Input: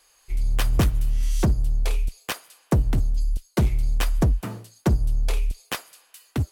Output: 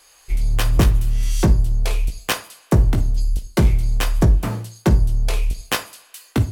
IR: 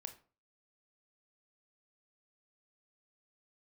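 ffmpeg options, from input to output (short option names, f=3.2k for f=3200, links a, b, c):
-filter_complex "[0:a]alimiter=limit=-17.5dB:level=0:latency=1:release=188,asplit=2[a][b];[1:a]atrim=start_sample=2205,lowpass=8.5k,adelay=18[c];[b][c]afir=irnorm=-1:irlink=0,volume=-1dB[d];[a][d]amix=inputs=2:normalize=0,volume=7.5dB"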